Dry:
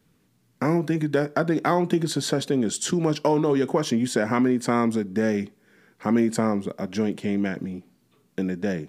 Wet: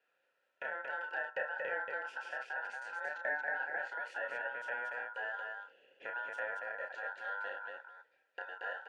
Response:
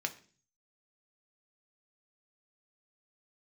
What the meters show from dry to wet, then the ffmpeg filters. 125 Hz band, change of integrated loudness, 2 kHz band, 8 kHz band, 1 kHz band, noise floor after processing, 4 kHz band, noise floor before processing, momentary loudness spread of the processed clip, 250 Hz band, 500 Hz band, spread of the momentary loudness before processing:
under -40 dB, -15.5 dB, -1.5 dB, under -30 dB, -12.0 dB, -80 dBFS, -22.0 dB, -65 dBFS, 10 LU, under -40 dB, -19.0 dB, 8 LU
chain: -filter_complex "[0:a]acrossover=split=450[a][b];[a]alimiter=limit=-18.5dB:level=0:latency=1[c];[b]acompressor=threshold=-41dB:ratio=6[d];[c][d]amix=inputs=2:normalize=0,aeval=exprs='val(0)*sin(2*PI*1200*n/s)':c=same,asplit=3[e][f][g];[e]bandpass=f=530:t=q:w=8,volume=0dB[h];[f]bandpass=f=1.84k:t=q:w=8,volume=-6dB[i];[g]bandpass=f=2.48k:t=q:w=8,volume=-9dB[j];[h][i][j]amix=inputs=3:normalize=0,aecho=1:1:32.07|230.3:0.562|0.708,volume=5dB"

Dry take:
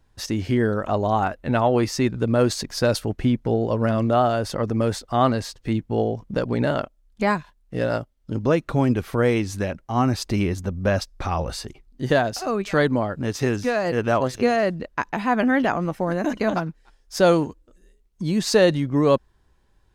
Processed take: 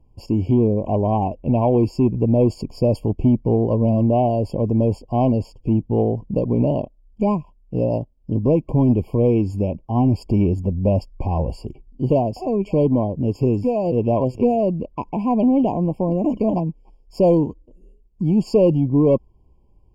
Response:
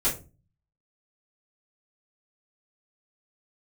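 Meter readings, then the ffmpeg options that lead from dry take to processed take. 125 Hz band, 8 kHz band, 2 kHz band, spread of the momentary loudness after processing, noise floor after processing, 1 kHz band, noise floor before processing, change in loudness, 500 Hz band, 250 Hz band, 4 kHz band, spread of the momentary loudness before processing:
+5.5 dB, under -15 dB, under -20 dB, 7 LU, -54 dBFS, -2.0 dB, -61 dBFS, +2.5 dB, +2.0 dB, +4.5 dB, under -10 dB, 8 LU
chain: -af "tiltshelf=f=1.1k:g=9.5,acontrast=25,afftfilt=real='re*eq(mod(floor(b*sr/1024/1100),2),0)':imag='im*eq(mod(floor(b*sr/1024/1100),2),0)':win_size=1024:overlap=0.75,volume=-7.5dB"

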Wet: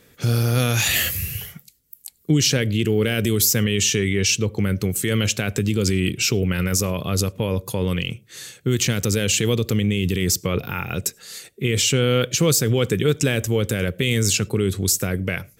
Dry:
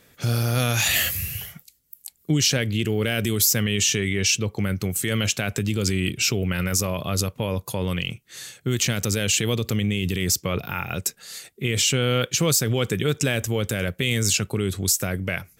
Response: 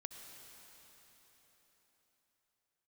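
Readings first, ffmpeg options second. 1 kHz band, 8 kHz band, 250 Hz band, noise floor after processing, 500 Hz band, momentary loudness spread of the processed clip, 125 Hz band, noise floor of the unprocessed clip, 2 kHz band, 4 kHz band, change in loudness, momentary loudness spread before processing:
0.0 dB, +1.0 dB, +3.5 dB, -55 dBFS, +4.0 dB, 9 LU, +3.0 dB, -60 dBFS, +1.0 dB, +1.0 dB, +2.0 dB, 9 LU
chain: -filter_complex "[0:a]asplit=2[a][b];[b]lowshelf=f=700:t=q:w=3:g=11[c];[1:a]atrim=start_sample=2205,afade=t=out:st=0.16:d=0.01,atrim=end_sample=7497[d];[c][d]afir=irnorm=-1:irlink=0,volume=-13dB[e];[a][e]amix=inputs=2:normalize=0"

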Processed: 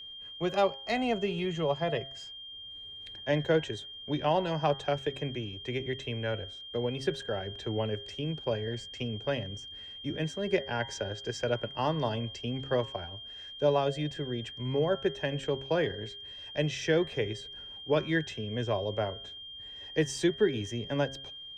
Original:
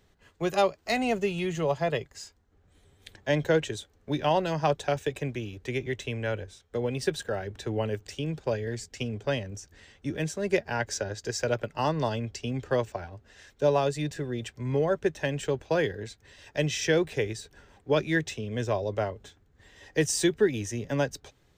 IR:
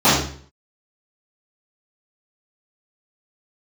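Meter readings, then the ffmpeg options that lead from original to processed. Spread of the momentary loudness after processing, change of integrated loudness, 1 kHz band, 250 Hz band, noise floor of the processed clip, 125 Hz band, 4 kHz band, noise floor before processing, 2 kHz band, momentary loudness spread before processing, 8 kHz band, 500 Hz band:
13 LU, -3.0 dB, -2.5 dB, -2.0 dB, -45 dBFS, -2.5 dB, +3.0 dB, -65 dBFS, -3.5 dB, 11 LU, -10.0 dB, -2.5 dB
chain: -af "aemphasis=mode=reproduction:type=50fm,bandreject=f=135.3:t=h:w=4,bandreject=f=270.6:t=h:w=4,bandreject=f=405.9:t=h:w=4,bandreject=f=541.2:t=h:w=4,bandreject=f=676.5:t=h:w=4,bandreject=f=811.8:t=h:w=4,bandreject=f=947.1:t=h:w=4,bandreject=f=1.0824k:t=h:w=4,bandreject=f=1.2177k:t=h:w=4,bandreject=f=1.353k:t=h:w=4,bandreject=f=1.4883k:t=h:w=4,bandreject=f=1.6236k:t=h:w=4,bandreject=f=1.7589k:t=h:w=4,bandreject=f=1.8942k:t=h:w=4,bandreject=f=2.0295k:t=h:w=4,aeval=exprs='val(0)+0.01*sin(2*PI*3200*n/s)':c=same,volume=-2.5dB"

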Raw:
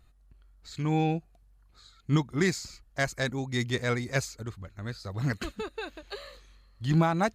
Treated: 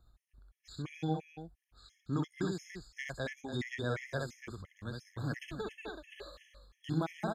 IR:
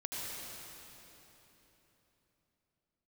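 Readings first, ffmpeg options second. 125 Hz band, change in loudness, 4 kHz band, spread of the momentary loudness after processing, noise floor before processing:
-9.5 dB, -9.0 dB, -9.5 dB, 15 LU, -61 dBFS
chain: -filter_complex "[0:a]acrossover=split=200|3500[a][b][c];[a]acompressor=threshold=-37dB:ratio=4[d];[b]acompressor=threshold=-27dB:ratio=4[e];[c]acompressor=threshold=-49dB:ratio=4[f];[d][e][f]amix=inputs=3:normalize=0,aecho=1:1:64.14|288.6:0.708|0.355,afftfilt=real='re*gt(sin(2*PI*2.9*pts/sr)*(1-2*mod(floor(b*sr/1024/1700),2)),0)':imag='im*gt(sin(2*PI*2.9*pts/sr)*(1-2*mod(floor(b*sr/1024/1700),2)),0)':win_size=1024:overlap=0.75,volume=-5dB"

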